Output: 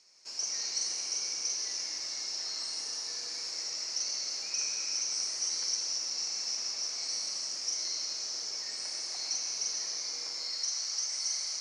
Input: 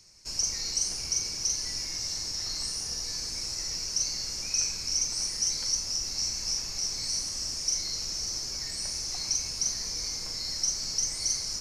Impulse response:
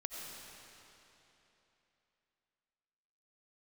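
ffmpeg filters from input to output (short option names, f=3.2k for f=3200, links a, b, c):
-filter_complex "[0:a]asetnsamples=n=441:p=0,asendcmd='10.33 highpass f 750',highpass=450,lowpass=6.1k[a];[1:a]atrim=start_sample=2205,afade=t=out:st=0.44:d=0.01,atrim=end_sample=19845[b];[a][b]afir=irnorm=-1:irlink=0"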